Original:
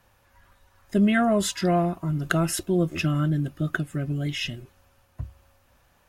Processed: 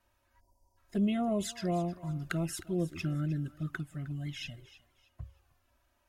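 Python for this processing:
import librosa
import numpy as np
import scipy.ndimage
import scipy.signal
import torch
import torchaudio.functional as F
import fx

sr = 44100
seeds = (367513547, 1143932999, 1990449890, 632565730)

y = fx.env_flanger(x, sr, rest_ms=3.2, full_db=-17.5)
y = fx.echo_thinned(y, sr, ms=310, feedback_pct=29, hz=610.0, wet_db=-16)
y = fx.spec_erase(y, sr, start_s=0.4, length_s=0.37, low_hz=1000.0, high_hz=4500.0)
y = F.gain(torch.from_numpy(y), -8.5).numpy()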